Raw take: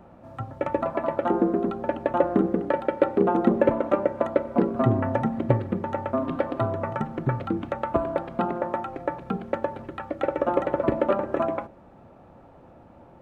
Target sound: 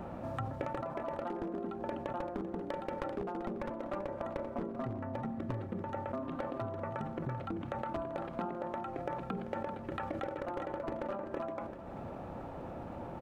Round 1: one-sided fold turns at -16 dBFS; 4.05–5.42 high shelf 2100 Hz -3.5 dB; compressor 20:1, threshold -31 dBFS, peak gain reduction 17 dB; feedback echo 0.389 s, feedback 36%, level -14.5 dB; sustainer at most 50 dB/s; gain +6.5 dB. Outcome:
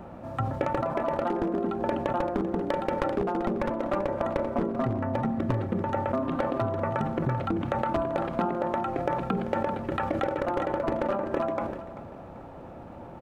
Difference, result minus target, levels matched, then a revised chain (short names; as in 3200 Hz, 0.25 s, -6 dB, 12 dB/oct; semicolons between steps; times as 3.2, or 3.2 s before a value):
compressor: peak gain reduction -10.5 dB
one-sided fold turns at -16 dBFS; 4.05–5.42 high shelf 2100 Hz -3.5 dB; compressor 20:1, threshold -42 dBFS, peak gain reduction 27.5 dB; feedback echo 0.389 s, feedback 36%, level -14.5 dB; sustainer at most 50 dB/s; gain +6.5 dB